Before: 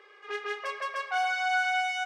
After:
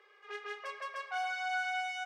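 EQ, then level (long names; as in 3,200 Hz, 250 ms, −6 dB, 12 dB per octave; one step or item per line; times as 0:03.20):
high-pass filter 370 Hz 24 dB per octave
−7.5 dB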